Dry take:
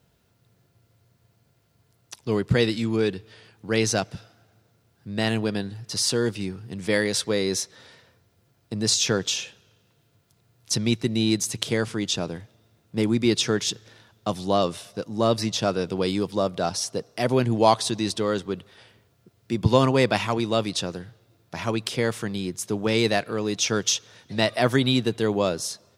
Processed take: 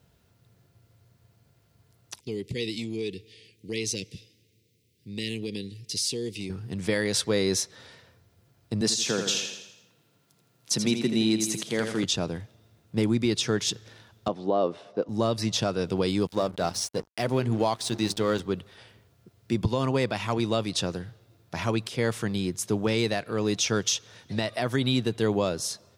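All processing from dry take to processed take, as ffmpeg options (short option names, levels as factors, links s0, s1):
-filter_complex "[0:a]asettb=1/sr,asplit=3[s0][s1][s2];[s0]atrim=end=2.204[s3];[s1]atrim=start=2.2:end=6.5,asetpts=PTS-STARTPTS,afade=t=in:d=0.004:c=qsin,afade=t=out:st=4.296:d=0.004:c=qsin,asuperstop=centerf=1000:order=12:qfactor=0.63,acompressor=threshold=0.0562:ratio=3:attack=3.2:release=140:knee=1:detection=peak,lowshelf=f=250:g=-10[s4];[s2]atrim=start=6.496[s5];[s3][s4]acrossfade=d=0.004:c1=hsin:c2=qsin[s6];[s6][s5]acrossfade=d=0.004:c1=qsin:c2=hsin,asettb=1/sr,asplit=3[s7][s8][s9];[s7]atrim=end=8.814[s10];[s8]atrim=start=8.81:end=12.04,asetpts=PTS-STARTPTS,afade=t=in:d=0.004:c=qsin,afade=t=out:st=3.226:d=0.004:c=qsin,highpass=f=150:w=0.5412,highpass=f=150:w=1.3066,aecho=1:1:82|164|246|328|410|492:0.398|0.199|0.0995|0.0498|0.0249|0.0124,atrim=end_sample=142443[s11];[s9]atrim=start=12.036[s12];[s10][s11]acrossfade=d=0.004:c1=hsin:c2=qsin[s13];[s13][s12]acrossfade=d=0.004:c1=qsin:c2=hsin,asettb=1/sr,asplit=3[s14][s15][s16];[s14]atrim=end=14.284[s17];[s15]atrim=start=14.28:end=15.09,asetpts=PTS-STARTPTS,afade=t=in:d=0.004:c=qsin,afade=t=out:st=0.806:d=0.004:c=qsin,highpass=370,lowpass=4300,tiltshelf=f=1100:g=9.5[s18];[s16]atrim=start=15.086[s19];[s17][s18]acrossfade=d=0.004:c1=hsin:c2=qsin[s20];[s20][s19]acrossfade=d=0.004:c1=qsin:c2=hsin,asettb=1/sr,asplit=3[s21][s22][s23];[s21]atrim=end=16.274[s24];[s22]atrim=start=16.27:end=18.4,asetpts=PTS-STARTPTS,afade=t=in:d=0.004:c=qsin,afade=t=out:st=2.126:d=0.004:c=qsin,bandreject=f=50:t=h:w=6,bandreject=f=100:t=h:w=6,bandreject=f=150:t=h:w=6,bandreject=f=200:t=h:w=6,bandreject=f=250:t=h:w=6,bandreject=f=300:t=h:w=6,bandreject=f=350:t=h:w=6,bandreject=f=400:t=h:w=6,aeval=exprs='sgn(val(0))*max(abs(val(0))-0.00891,0)':c=same[s25];[s23]atrim=start=18.396[s26];[s24][s25]acrossfade=d=0.004:c1=hsin:c2=qsin[s27];[s27][s26]acrossfade=d=0.004:c1=qsin:c2=hsin,equalizer=f=72:t=o:w=1.6:g=4,alimiter=limit=0.2:level=0:latency=1:release=254"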